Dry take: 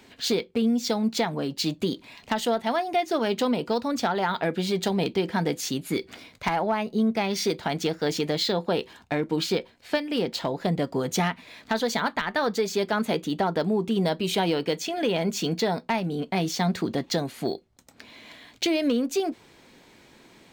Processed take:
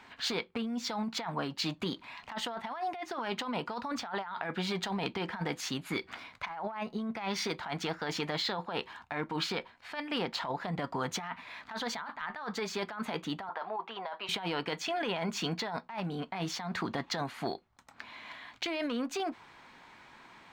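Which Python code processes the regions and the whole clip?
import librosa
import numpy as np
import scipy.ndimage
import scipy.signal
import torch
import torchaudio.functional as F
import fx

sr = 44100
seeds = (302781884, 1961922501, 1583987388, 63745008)

y = fx.chain(x, sr, fx.highpass_res(hz=760.0, q=1.6),
    fx.air_absorb(metres=210.0), at=(13.49, 14.29))
y = fx.lowpass(y, sr, hz=1100.0, slope=6)
y = fx.low_shelf_res(y, sr, hz=690.0, db=-12.5, q=1.5)
y = fx.over_compress(y, sr, threshold_db=-38.0, ratio=-1.0)
y = y * 10.0 ** (3.0 / 20.0)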